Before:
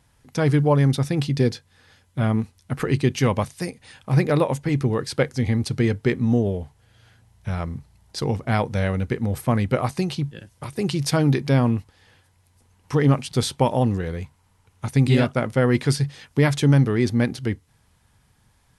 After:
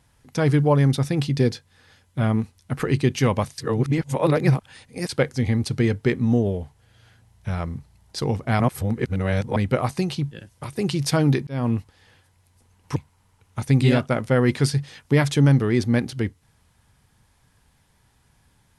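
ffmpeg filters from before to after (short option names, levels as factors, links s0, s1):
-filter_complex "[0:a]asplit=7[s0][s1][s2][s3][s4][s5][s6];[s0]atrim=end=3.582[s7];[s1]atrim=start=3.578:end=5.092,asetpts=PTS-STARTPTS,areverse[s8];[s2]atrim=start=5.088:end=8.602[s9];[s3]atrim=start=8.598:end=9.562,asetpts=PTS-STARTPTS,areverse[s10];[s4]atrim=start=9.558:end=11.47,asetpts=PTS-STARTPTS,afade=t=out:st=1.908:d=0.004:c=hsin[s11];[s5]atrim=start=11.47:end=12.962,asetpts=PTS-STARTPTS,afade=t=in:d=0.27[s12];[s6]atrim=start=14.218[s13];[s7][s8]acrossfade=d=0.004:c1=hsin:c2=hsin[s14];[s14][s9]acrossfade=d=0.004:c1=hsin:c2=hsin[s15];[s15][s10]acrossfade=d=0.004:c1=hsin:c2=hsin[s16];[s11][s12]concat=n=2:v=0:a=1[s17];[s16][s17]acrossfade=d=0.004:c1=hsin:c2=hsin[s18];[s18][s13]acrossfade=d=0.004:c1=hsin:c2=hsin"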